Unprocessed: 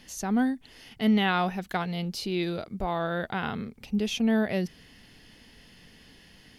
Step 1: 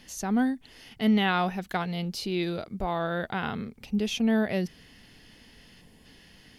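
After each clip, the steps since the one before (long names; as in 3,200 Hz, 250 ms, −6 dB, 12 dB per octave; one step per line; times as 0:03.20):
gain on a spectral selection 0:05.81–0:06.05, 1,100–6,800 Hz −7 dB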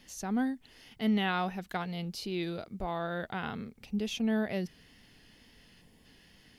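bit reduction 12 bits
tape wow and flutter 27 cents
level −5.5 dB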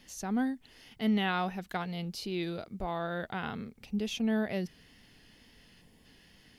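no processing that can be heard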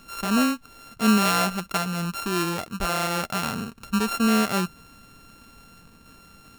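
samples sorted by size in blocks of 32 samples
level +9 dB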